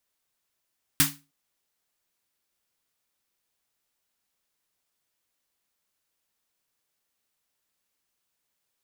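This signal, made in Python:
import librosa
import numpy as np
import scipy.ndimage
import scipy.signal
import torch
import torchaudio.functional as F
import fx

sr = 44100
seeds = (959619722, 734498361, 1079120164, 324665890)

y = fx.drum_snare(sr, seeds[0], length_s=0.31, hz=150.0, second_hz=280.0, noise_db=9, noise_from_hz=930.0, decay_s=0.31, noise_decay_s=0.25)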